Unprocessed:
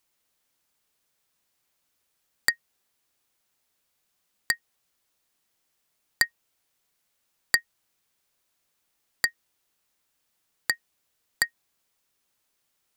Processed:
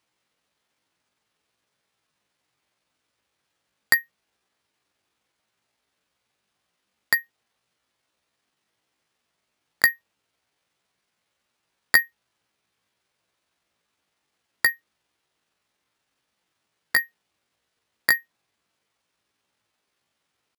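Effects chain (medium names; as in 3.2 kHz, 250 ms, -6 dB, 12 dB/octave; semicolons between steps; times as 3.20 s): high-pass 66 Hz 12 dB/octave; tempo 0.63×; distance through air 100 m; careless resampling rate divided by 3×, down none, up hold; trim +5.5 dB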